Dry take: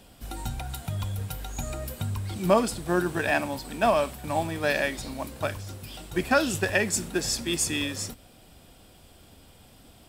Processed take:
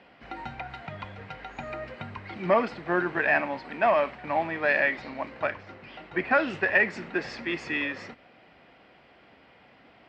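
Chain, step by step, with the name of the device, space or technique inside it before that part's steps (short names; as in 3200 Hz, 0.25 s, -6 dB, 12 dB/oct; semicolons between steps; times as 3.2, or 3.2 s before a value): overdrive pedal into a guitar cabinet (overdrive pedal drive 13 dB, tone 2600 Hz, clips at -7.5 dBFS; speaker cabinet 78–3800 Hz, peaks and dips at 91 Hz -9 dB, 2000 Hz +8 dB, 3500 Hz -9 dB); 5.5–6.48 high shelf 4300 Hz -5.5 dB; gain -3.5 dB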